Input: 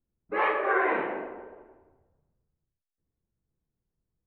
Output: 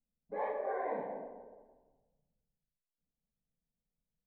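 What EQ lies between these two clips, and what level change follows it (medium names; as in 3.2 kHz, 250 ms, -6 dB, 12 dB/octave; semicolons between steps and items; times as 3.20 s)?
boxcar filter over 16 samples; static phaser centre 350 Hz, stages 6; -4.5 dB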